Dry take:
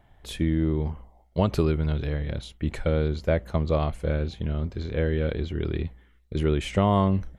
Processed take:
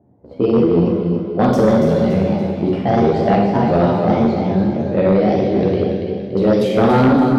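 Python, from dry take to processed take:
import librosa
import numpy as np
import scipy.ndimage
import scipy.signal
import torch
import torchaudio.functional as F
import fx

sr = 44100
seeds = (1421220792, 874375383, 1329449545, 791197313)

y = fx.pitch_ramps(x, sr, semitones=7.5, every_ms=603)
y = fx.env_lowpass(y, sr, base_hz=420.0, full_db=-21.0)
y = scipy.signal.sosfilt(scipy.signal.butter(4, 98.0, 'highpass', fs=sr, output='sos'), y)
y = fx.high_shelf(y, sr, hz=4100.0, db=5.0)
y = fx.echo_feedback(y, sr, ms=285, feedback_pct=43, wet_db=-6)
y = fx.rev_schroeder(y, sr, rt60_s=0.89, comb_ms=31, drr_db=0.0)
y = fx.chorus_voices(y, sr, voices=4, hz=0.91, base_ms=13, depth_ms=3.0, mix_pct=35)
y = fx.peak_eq(y, sr, hz=350.0, db=13.5, octaves=2.8)
y = fx.cheby_harmonics(y, sr, harmonics=(5,), levels_db=(-13,), full_scale_db=0.5)
y = y * librosa.db_to_amplitude(-3.5)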